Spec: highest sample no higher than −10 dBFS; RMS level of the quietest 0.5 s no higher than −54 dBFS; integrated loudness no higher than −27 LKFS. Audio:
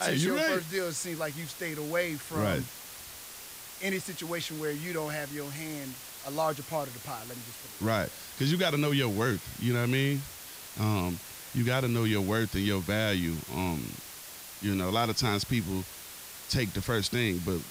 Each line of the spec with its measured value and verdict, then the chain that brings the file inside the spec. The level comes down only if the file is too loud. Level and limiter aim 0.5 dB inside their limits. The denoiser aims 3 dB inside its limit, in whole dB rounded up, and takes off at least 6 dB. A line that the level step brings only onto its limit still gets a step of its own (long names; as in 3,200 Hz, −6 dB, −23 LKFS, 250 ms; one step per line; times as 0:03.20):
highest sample −14.5 dBFS: in spec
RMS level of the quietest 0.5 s −45 dBFS: out of spec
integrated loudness −31.0 LKFS: in spec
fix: broadband denoise 12 dB, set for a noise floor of −45 dBFS